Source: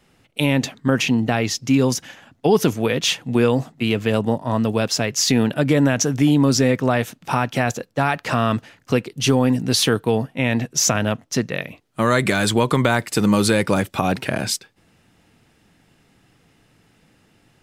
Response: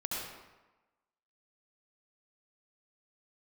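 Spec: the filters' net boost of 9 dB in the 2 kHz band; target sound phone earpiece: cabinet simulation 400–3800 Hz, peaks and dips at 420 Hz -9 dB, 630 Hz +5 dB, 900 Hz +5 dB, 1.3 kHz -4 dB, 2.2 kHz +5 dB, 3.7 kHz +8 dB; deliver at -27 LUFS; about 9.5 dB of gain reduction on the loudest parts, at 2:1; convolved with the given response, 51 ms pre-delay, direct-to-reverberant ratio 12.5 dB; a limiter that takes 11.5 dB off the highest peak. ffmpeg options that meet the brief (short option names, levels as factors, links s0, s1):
-filter_complex "[0:a]equalizer=f=2000:t=o:g=9,acompressor=threshold=0.0355:ratio=2,alimiter=limit=0.119:level=0:latency=1,asplit=2[s0][s1];[1:a]atrim=start_sample=2205,adelay=51[s2];[s1][s2]afir=irnorm=-1:irlink=0,volume=0.15[s3];[s0][s3]amix=inputs=2:normalize=0,highpass=400,equalizer=f=420:t=q:w=4:g=-9,equalizer=f=630:t=q:w=4:g=5,equalizer=f=900:t=q:w=4:g=5,equalizer=f=1300:t=q:w=4:g=-4,equalizer=f=2200:t=q:w=4:g=5,equalizer=f=3700:t=q:w=4:g=8,lowpass=f=3800:w=0.5412,lowpass=f=3800:w=1.3066,volume=1.68"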